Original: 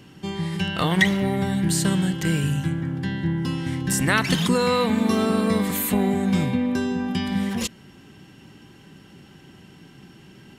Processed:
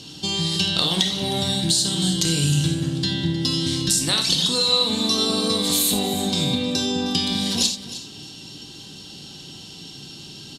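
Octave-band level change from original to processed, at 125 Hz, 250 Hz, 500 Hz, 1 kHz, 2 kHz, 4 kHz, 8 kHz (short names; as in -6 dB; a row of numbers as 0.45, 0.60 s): -1.0, -2.5, -2.0, -3.0, -6.5, +12.5, +8.0 dB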